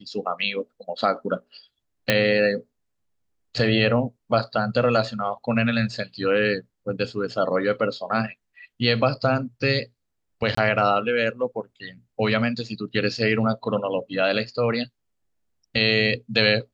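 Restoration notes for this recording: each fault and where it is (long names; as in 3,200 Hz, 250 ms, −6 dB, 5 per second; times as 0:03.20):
0:02.10: click −4 dBFS
0:10.55–0:10.57: drop-out 24 ms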